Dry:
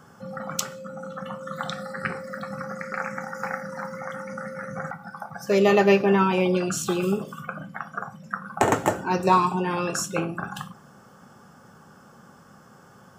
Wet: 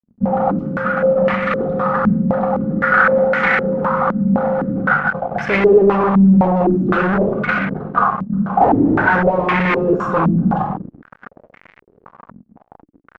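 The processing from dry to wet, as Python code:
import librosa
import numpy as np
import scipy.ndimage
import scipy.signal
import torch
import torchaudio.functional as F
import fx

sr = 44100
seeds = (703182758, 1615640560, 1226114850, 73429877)

y = fx.room_shoebox(x, sr, seeds[0], volume_m3=2000.0, walls='furnished', distance_m=1.9)
y = fx.fuzz(y, sr, gain_db=34.0, gate_db=-42.0)
y = fx.filter_held_lowpass(y, sr, hz=3.9, low_hz=220.0, high_hz=2100.0)
y = y * librosa.db_to_amplitude(-3.0)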